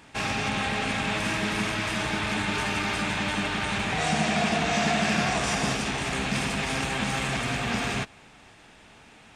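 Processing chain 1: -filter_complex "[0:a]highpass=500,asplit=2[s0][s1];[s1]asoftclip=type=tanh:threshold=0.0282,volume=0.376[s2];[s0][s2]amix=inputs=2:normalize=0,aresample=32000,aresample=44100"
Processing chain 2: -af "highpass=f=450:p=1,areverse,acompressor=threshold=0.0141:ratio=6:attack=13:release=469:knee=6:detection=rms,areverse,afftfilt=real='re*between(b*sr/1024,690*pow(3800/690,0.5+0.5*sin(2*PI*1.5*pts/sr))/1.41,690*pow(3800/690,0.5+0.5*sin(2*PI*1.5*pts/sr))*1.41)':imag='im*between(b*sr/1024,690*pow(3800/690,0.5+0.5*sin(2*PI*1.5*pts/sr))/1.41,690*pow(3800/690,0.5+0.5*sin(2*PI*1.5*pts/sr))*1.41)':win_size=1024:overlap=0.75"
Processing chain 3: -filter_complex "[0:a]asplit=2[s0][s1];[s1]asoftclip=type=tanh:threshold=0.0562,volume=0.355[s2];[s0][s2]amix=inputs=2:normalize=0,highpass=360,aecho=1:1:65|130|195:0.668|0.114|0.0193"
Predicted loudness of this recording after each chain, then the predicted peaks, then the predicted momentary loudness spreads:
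-26.0 LUFS, -45.0 LUFS, -24.0 LUFS; -14.5 dBFS, -31.0 dBFS, -11.5 dBFS; 3 LU, 6 LU, 3 LU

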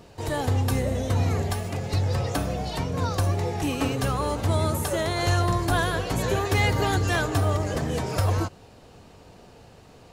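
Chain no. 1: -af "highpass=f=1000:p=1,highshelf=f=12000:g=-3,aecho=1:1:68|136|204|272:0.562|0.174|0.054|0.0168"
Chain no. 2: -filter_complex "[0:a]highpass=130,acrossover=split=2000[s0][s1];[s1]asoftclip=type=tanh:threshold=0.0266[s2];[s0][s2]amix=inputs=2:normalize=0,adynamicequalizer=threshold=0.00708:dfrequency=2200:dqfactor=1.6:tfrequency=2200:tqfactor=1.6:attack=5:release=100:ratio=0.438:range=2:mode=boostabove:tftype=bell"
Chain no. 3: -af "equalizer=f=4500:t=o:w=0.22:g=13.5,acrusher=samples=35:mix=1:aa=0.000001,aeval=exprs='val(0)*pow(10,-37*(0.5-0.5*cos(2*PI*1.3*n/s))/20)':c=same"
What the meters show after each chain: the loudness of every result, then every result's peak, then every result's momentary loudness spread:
-30.5 LUFS, -27.0 LUFS, -31.0 LUFS; -12.0 dBFS, -12.0 dBFS, -13.0 dBFS; 8 LU, 6 LU, 19 LU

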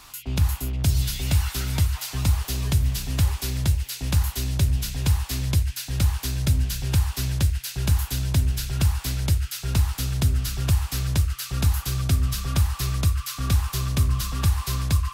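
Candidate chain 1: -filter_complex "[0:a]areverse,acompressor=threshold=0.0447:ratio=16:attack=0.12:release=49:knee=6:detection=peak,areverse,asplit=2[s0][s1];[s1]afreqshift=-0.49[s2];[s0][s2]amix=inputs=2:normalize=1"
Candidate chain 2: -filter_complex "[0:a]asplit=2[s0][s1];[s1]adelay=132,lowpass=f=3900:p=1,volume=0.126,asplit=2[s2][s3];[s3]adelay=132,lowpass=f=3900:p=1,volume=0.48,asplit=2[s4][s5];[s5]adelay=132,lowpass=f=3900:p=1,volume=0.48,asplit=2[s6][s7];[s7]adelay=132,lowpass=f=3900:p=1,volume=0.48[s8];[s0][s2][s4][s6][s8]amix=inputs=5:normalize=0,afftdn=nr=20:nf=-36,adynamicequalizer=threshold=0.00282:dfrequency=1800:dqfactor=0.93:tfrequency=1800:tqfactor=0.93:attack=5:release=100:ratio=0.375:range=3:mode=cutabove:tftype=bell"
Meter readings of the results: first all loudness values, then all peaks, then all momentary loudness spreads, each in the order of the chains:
-36.5 LUFS, -25.0 LUFS; -24.5 dBFS, -11.5 dBFS; 4 LU, 3 LU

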